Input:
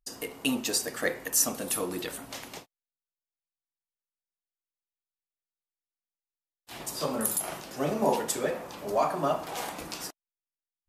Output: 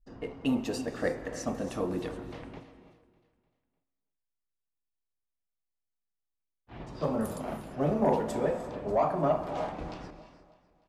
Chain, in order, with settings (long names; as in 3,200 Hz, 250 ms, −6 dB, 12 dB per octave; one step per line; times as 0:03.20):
RIAA equalisation playback
low-pass that shuts in the quiet parts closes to 1,800 Hz, open at −25 dBFS
dynamic equaliser 690 Hz, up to +5 dB, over −40 dBFS, Q 1
soft clipping −10 dBFS, distortion −22 dB
on a send: repeating echo 300 ms, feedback 47%, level −19 dB
on the sum: reverb whose tail is shaped and stops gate 370 ms rising, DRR 11.5 dB
level −5 dB